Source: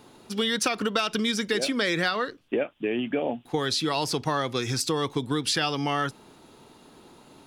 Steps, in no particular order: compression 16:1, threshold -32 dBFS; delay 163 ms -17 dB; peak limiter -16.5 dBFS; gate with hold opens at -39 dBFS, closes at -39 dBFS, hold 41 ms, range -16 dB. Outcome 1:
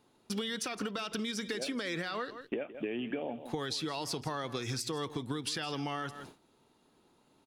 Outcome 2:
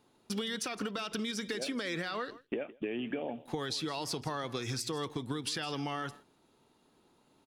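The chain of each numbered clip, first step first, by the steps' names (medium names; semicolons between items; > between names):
peak limiter > delay > compression > gate with hold; peak limiter > compression > delay > gate with hold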